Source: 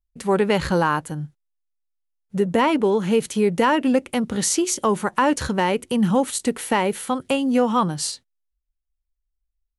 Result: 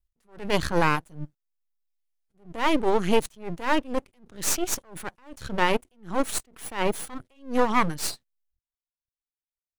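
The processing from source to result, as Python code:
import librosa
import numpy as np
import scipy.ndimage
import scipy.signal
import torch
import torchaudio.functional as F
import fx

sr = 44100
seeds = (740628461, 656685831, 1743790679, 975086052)

y = fx.dereverb_blind(x, sr, rt60_s=0.8)
y = np.maximum(y, 0.0)
y = fx.attack_slew(y, sr, db_per_s=170.0)
y = y * 10.0 ** (3.0 / 20.0)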